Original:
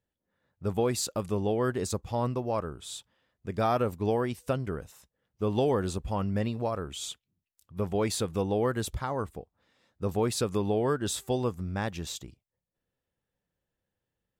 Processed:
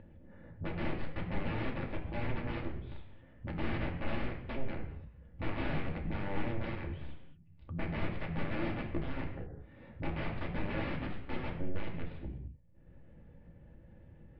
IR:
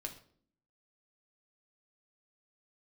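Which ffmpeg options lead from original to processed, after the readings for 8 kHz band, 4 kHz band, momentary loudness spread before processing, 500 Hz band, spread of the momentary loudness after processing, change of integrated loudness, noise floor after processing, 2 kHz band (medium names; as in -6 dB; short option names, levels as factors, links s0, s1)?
under -40 dB, -11.5 dB, 11 LU, -13.5 dB, 21 LU, -9.0 dB, -58 dBFS, 0.0 dB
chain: -filter_complex "[0:a]asplit=2[s0][s1];[s1]acompressor=threshold=0.00794:ratio=6,volume=1.19[s2];[s0][s2]amix=inputs=2:normalize=0,aeval=exprs='0.211*(cos(1*acos(clip(val(0)/0.211,-1,1)))-cos(1*PI/2))+0.00473*(cos(4*acos(clip(val(0)/0.211,-1,1)))-cos(4*PI/2))+0.00596*(cos(5*acos(clip(val(0)/0.211,-1,1)))-cos(5*PI/2))+0.0473*(cos(7*acos(clip(val(0)/0.211,-1,1)))-cos(7*PI/2))+0.00133*(cos(8*acos(clip(val(0)/0.211,-1,1)))-cos(8*PI/2))':c=same,aresample=11025,aeval=exprs='(mod(20*val(0)+1,2)-1)/20':c=same,aresample=44100,lowshelf=f=250:g=8.5[s3];[1:a]atrim=start_sample=2205,afade=t=out:st=0.17:d=0.01,atrim=end_sample=7938,asetrate=23814,aresample=44100[s4];[s3][s4]afir=irnorm=-1:irlink=0,acompressor=mode=upward:threshold=0.0224:ratio=2.5,lowpass=f=2200:w=0.5412,lowpass=f=2200:w=1.3066,equalizer=f=1300:t=o:w=1.3:g=-8,volume=0.891"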